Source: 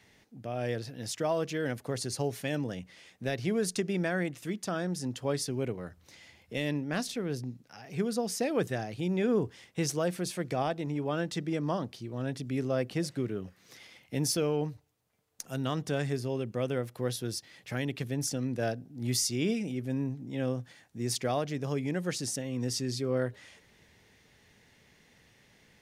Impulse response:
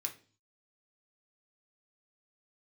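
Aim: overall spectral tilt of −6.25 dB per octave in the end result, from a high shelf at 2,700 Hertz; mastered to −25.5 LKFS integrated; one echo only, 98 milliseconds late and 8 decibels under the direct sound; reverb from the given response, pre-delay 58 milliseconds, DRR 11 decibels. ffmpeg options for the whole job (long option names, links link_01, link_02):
-filter_complex "[0:a]highshelf=frequency=2700:gain=-7,aecho=1:1:98:0.398,asplit=2[link_01][link_02];[1:a]atrim=start_sample=2205,adelay=58[link_03];[link_02][link_03]afir=irnorm=-1:irlink=0,volume=-10.5dB[link_04];[link_01][link_04]amix=inputs=2:normalize=0,volume=7.5dB"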